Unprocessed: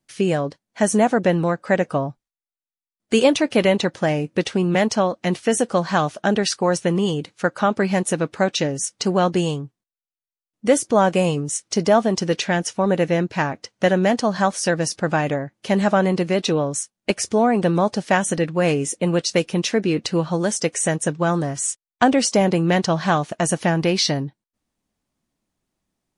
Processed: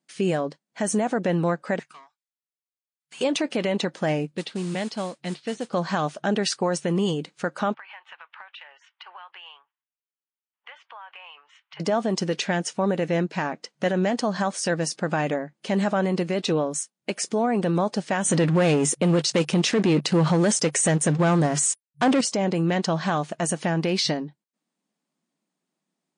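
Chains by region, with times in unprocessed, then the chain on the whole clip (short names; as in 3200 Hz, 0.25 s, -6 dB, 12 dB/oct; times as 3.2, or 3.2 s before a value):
1.79–3.21 Bessel high-pass 1700 Hz, order 8 + tube stage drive 39 dB, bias 0.75
4.27–5.73 ladder low-pass 4800 Hz, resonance 55% + low shelf 190 Hz +8 dB + modulation noise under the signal 14 dB
7.74–11.8 elliptic band-pass 900–3100 Hz, stop band 60 dB + compressor, threshold -37 dBFS
18.25–22.21 HPF 80 Hz + bell 140 Hz +7.5 dB 0.3 oct + sample leveller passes 3
whole clip: FFT band-pass 150–9800 Hz; notch 5800 Hz, Q 21; limiter -12 dBFS; gain -2.5 dB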